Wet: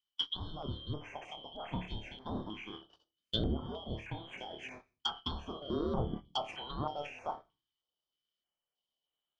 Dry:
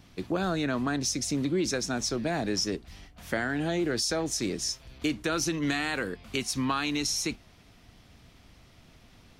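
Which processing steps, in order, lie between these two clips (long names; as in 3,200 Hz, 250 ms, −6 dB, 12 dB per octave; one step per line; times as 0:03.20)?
band-splitting scrambler in four parts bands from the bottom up 2413
reversed playback
downward compressor 16 to 1, threshold −36 dBFS, peak gain reduction 13.5 dB
reversed playback
parametric band 720 Hz +4 dB 0.42 octaves
flutter between parallel walls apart 4.7 metres, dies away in 0.27 s
noise gate −41 dBFS, range −47 dB
on a send at −19 dB: convolution reverb RT60 0.35 s, pre-delay 5 ms
on the sum: treble cut that deepens with the level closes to 810 Hz, closed at −35 dBFS
high-shelf EQ 10,000 Hz −8.5 dB
notch on a step sequencer 3.2 Hz 600–5,500 Hz
level +11.5 dB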